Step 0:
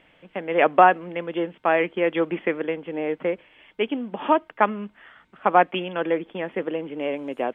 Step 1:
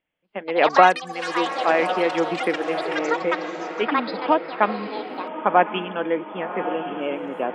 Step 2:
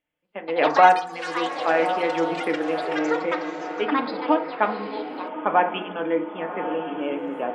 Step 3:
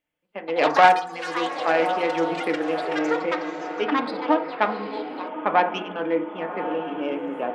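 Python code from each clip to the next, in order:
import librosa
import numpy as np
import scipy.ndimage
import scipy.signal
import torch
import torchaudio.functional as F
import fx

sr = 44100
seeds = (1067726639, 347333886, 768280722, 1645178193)

y1 = fx.noise_reduce_blind(x, sr, reduce_db=25)
y1 = fx.echo_diffused(y1, sr, ms=1129, feedback_pct=53, wet_db=-9.5)
y1 = fx.echo_pitch(y1, sr, ms=242, semitones=7, count=3, db_per_echo=-6.0)
y2 = fx.rev_fdn(y1, sr, rt60_s=0.52, lf_ratio=0.95, hf_ratio=0.4, size_ms=20.0, drr_db=5.0)
y2 = y2 * librosa.db_to_amplitude(-3.5)
y3 = fx.self_delay(y2, sr, depth_ms=0.14)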